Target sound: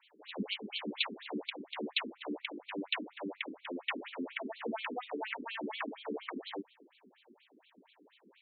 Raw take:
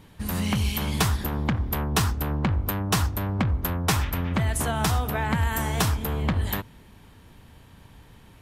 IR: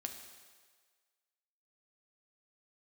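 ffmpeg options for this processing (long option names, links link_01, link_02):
-filter_complex "[0:a]acrossover=split=150|1000|1900[link_01][link_02][link_03][link_04];[link_03]aeval=exprs='abs(val(0))':channel_layout=same[link_05];[link_01][link_02][link_05][link_04]amix=inputs=4:normalize=0,afftfilt=real='re*between(b*sr/1024,290*pow(3200/290,0.5+0.5*sin(2*PI*4.2*pts/sr))/1.41,290*pow(3200/290,0.5+0.5*sin(2*PI*4.2*pts/sr))*1.41)':imag='im*between(b*sr/1024,290*pow(3200/290,0.5+0.5*sin(2*PI*4.2*pts/sr))/1.41,290*pow(3200/290,0.5+0.5*sin(2*PI*4.2*pts/sr))*1.41)':win_size=1024:overlap=0.75"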